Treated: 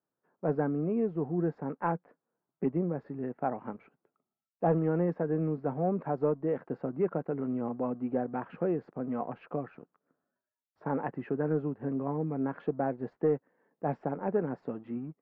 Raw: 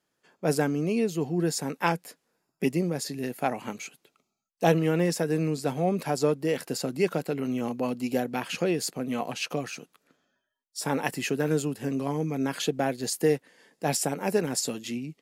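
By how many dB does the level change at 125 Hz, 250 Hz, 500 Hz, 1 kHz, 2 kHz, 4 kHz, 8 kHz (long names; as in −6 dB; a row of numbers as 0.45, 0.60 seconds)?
−4.0 dB, −3.5 dB, −3.5 dB, −4.0 dB, −12.5 dB, below −30 dB, below −40 dB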